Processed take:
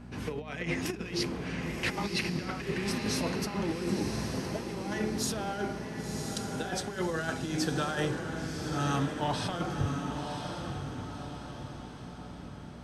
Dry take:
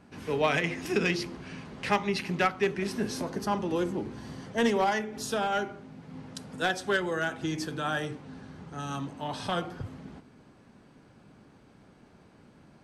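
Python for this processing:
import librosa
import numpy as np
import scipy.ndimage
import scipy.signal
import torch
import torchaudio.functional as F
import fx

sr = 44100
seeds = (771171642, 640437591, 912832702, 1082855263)

y = fx.low_shelf(x, sr, hz=85.0, db=7.0)
y = fx.over_compress(y, sr, threshold_db=-32.0, ratio=-0.5)
y = fx.dmg_buzz(y, sr, base_hz=60.0, harmonics=4, level_db=-46.0, tilt_db=0, odd_only=False)
y = fx.echo_diffused(y, sr, ms=1041, feedback_pct=47, wet_db=-5.0)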